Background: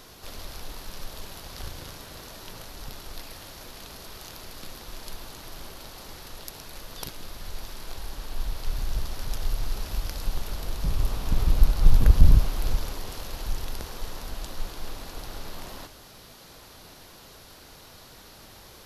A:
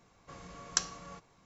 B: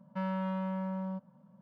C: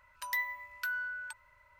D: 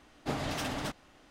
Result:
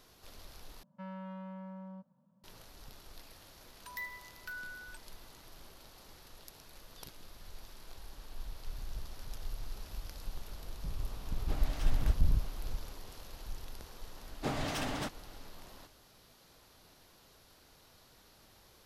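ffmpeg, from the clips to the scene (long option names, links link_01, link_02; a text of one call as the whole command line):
ffmpeg -i bed.wav -i cue0.wav -i cue1.wav -i cue2.wav -i cue3.wav -filter_complex "[4:a]asplit=2[link_01][link_02];[0:a]volume=-13dB,asplit=2[link_03][link_04];[link_03]atrim=end=0.834[link_05];[2:a]atrim=end=1.61,asetpts=PTS-STARTPTS,volume=-10.5dB[link_06];[link_04]atrim=start=2.436[link_07];[3:a]atrim=end=1.79,asetpts=PTS-STARTPTS,volume=-8.5dB,afade=type=in:duration=0.004:curve=hsin,afade=type=out:start_time=1.786:duration=0.004:curve=hsin,adelay=3640[link_08];[link_01]atrim=end=1.3,asetpts=PTS-STARTPTS,volume=-11dB,afade=type=in:duration=0.004:curve=hsin,afade=type=out:start_time=1.296:duration=0.004:curve=hsin,adelay=494802S[link_09];[link_02]atrim=end=1.3,asetpts=PTS-STARTPTS,volume=-1.5dB,afade=type=in:duration=0.004:curve=hsin,afade=type=out:start_time=1.296:duration=0.004:curve=hsin,adelay=14170[link_10];[link_05][link_06]acrossfade=duration=0.004:curve1=hsin:curve2=hsin[link_11];[link_11][link_07]acrossfade=duration=0.004:curve1=hsin:curve2=hsin[link_12];[link_12][link_08][link_09][link_10]amix=inputs=4:normalize=0" out.wav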